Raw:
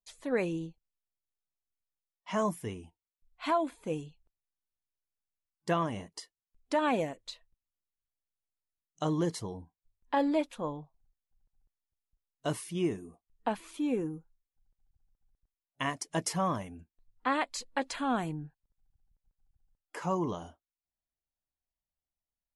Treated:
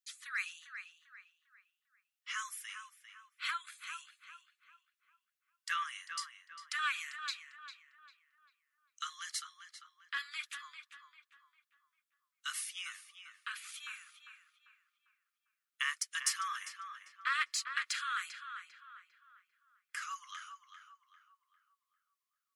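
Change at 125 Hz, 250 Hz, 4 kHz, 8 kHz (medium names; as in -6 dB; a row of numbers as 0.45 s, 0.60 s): under -40 dB, under -40 dB, +3.5 dB, +3.0 dB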